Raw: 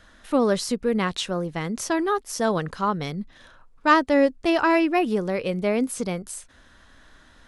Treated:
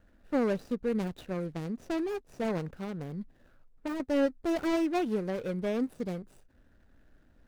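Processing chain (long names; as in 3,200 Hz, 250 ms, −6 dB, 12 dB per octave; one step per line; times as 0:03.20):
running median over 41 samples
0:02.65–0:04.00: downward compressor 10 to 1, threshold −26 dBFS, peak gain reduction 9 dB
level −6 dB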